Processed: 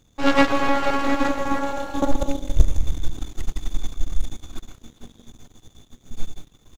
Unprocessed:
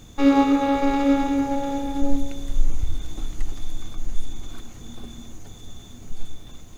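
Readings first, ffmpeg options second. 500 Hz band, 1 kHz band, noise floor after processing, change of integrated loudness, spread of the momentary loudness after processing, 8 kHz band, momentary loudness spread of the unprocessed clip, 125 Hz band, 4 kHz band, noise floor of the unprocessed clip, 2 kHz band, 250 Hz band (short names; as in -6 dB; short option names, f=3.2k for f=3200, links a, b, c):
+2.0 dB, +2.0 dB, -59 dBFS, -1.5 dB, 22 LU, n/a, 22 LU, +4.5 dB, +4.5 dB, -42 dBFS, +8.0 dB, -4.5 dB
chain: -af "aecho=1:1:163.3|256.6:0.562|0.282,aeval=exprs='0.596*(cos(1*acos(clip(val(0)/0.596,-1,1)))-cos(1*PI/2))+0.168*(cos(3*acos(clip(val(0)/0.596,-1,1)))-cos(3*PI/2))+0.106*(cos(4*acos(clip(val(0)/0.596,-1,1)))-cos(4*PI/2))+0.168*(cos(6*acos(clip(val(0)/0.596,-1,1)))-cos(6*PI/2))':c=same,volume=2dB"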